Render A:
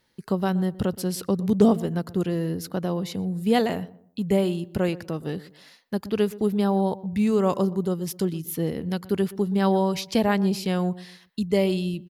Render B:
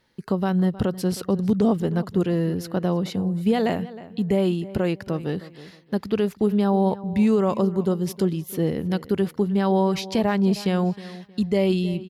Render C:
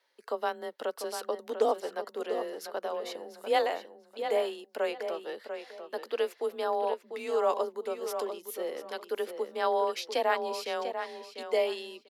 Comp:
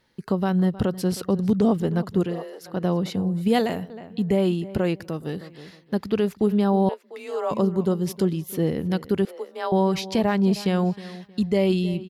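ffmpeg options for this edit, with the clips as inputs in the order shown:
-filter_complex "[2:a]asplit=3[a][b][c];[0:a]asplit=2[d][e];[1:a]asplit=6[f][g][h][i][j][k];[f]atrim=end=2.44[l];[a]atrim=start=2.2:end=2.84[m];[g]atrim=start=2.6:end=3.482[n];[d]atrim=start=3.478:end=3.902[o];[h]atrim=start=3.898:end=5.002[p];[e]atrim=start=4.998:end=5.412[q];[i]atrim=start=5.408:end=6.892[r];[b]atrim=start=6.888:end=7.512[s];[j]atrim=start=7.508:end=9.252[t];[c]atrim=start=9.248:end=9.722[u];[k]atrim=start=9.718[v];[l][m]acrossfade=d=0.24:c1=tri:c2=tri[w];[w][n]acrossfade=d=0.24:c1=tri:c2=tri[x];[x][o]acrossfade=d=0.004:c1=hsin:c2=hsin[y];[y][p]acrossfade=d=0.004:c1=hsin:c2=hsin[z];[z][q]acrossfade=d=0.004:c1=hsin:c2=hsin[aa];[aa][r]acrossfade=d=0.004:c1=hsin:c2=hsin[ab];[ab][s]acrossfade=d=0.004:c1=hsin:c2=hsin[ac];[ac][t]acrossfade=d=0.004:c1=hsin:c2=hsin[ad];[ad][u]acrossfade=d=0.004:c1=hsin:c2=hsin[ae];[ae][v]acrossfade=d=0.004:c1=hsin:c2=hsin"

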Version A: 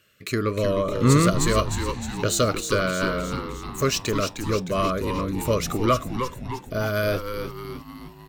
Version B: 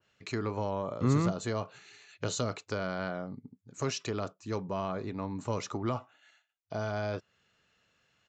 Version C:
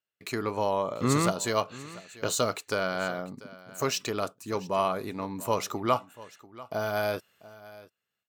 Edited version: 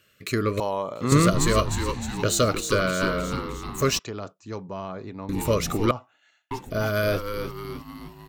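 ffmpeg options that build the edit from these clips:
-filter_complex "[1:a]asplit=2[a][b];[0:a]asplit=4[c][d][e][f];[c]atrim=end=0.602[g];[2:a]atrim=start=0.598:end=1.122[h];[d]atrim=start=1.118:end=3.992[i];[a]atrim=start=3.988:end=5.292[j];[e]atrim=start=5.288:end=5.912[k];[b]atrim=start=5.908:end=6.512[l];[f]atrim=start=6.508[m];[g][h]acrossfade=d=0.004:c1=hsin:c2=hsin[n];[n][i]acrossfade=d=0.004:c1=hsin:c2=hsin[o];[o][j]acrossfade=d=0.004:c1=hsin:c2=hsin[p];[p][k]acrossfade=d=0.004:c1=hsin:c2=hsin[q];[q][l]acrossfade=d=0.004:c1=hsin:c2=hsin[r];[r][m]acrossfade=d=0.004:c1=hsin:c2=hsin"

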